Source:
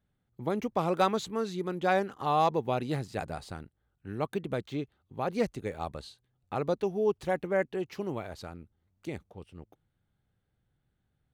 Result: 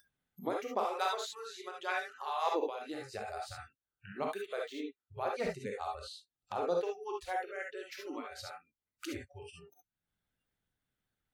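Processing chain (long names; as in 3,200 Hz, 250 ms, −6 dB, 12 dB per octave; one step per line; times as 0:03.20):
0:04.23–0:04.69: low-shelf EQ 320 Hz −9 dB
upward compression, threshold −31 dBFS
harmonic and percussive parts rebalanced harmonic −15 dB
0:05.98–0:06.80: parametric band 2,100 Hz −8.5 dB 0.42 octaves
reverb whose tail is shaped and stops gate 90 ms rising, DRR −1 dB
noise reduction from a noise print of the clip's start 30 dB
0:02.66–0:03.28: downward compressor, threshold −34 dBFS, peak gain reduction 7 dB
one half of a high-frequency compander encoder only
level −4 dB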